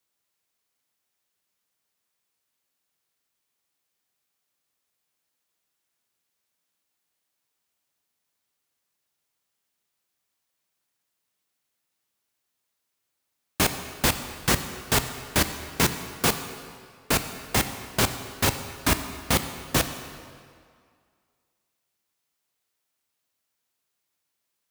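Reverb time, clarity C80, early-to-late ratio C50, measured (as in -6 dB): 2.1 s, 10.0 dB, 9.5 dB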